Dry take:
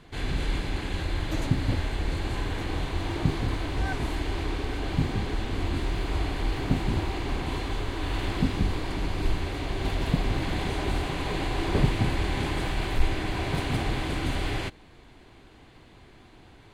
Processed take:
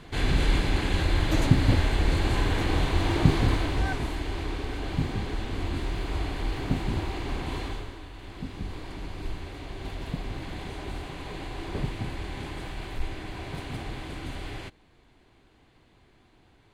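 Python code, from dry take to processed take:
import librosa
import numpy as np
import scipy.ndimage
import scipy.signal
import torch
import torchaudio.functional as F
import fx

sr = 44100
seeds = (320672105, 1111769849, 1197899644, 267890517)

y = fx.gain(x, sr, db=fx.line((3.49, 5.0), (4.14, -2.0), (7.66, -2.0), (8.13, -15.0), (8.79, -8.0)))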